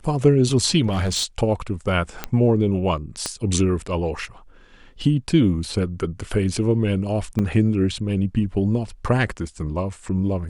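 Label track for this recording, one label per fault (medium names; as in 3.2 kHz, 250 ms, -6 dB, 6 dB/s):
0.870000	1.240000	clipped -18 dBFS
2.240000	2.240000	pop -9 dBFS
3.260000	3.260000	pop -10 dBFS
7.390000	7.390000	dropout 4.6 ms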